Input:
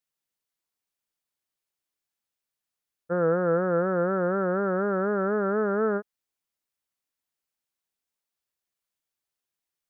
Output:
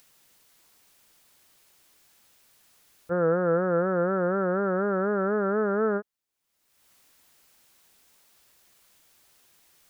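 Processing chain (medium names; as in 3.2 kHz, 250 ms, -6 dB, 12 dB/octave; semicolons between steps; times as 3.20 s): upward compressor, threshold -40 dBFS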